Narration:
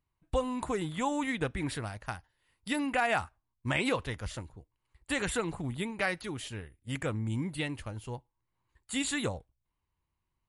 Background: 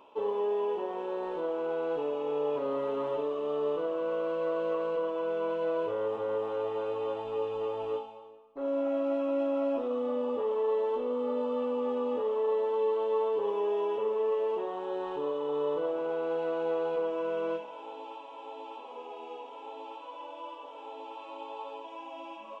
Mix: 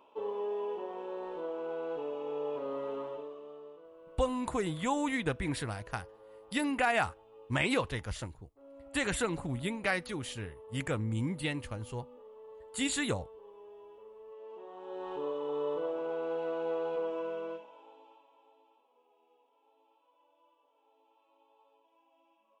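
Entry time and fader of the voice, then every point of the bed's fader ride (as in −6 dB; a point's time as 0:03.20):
3.85 s, 0.0 dB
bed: 0:02.95 −5.5 dB
0:03.81 −22.5 dB
0:14.25 −22.5 dB
0:15.13 −3.5 dB
0:17.17 −3.5 dB
0:18.88 −26.5 dB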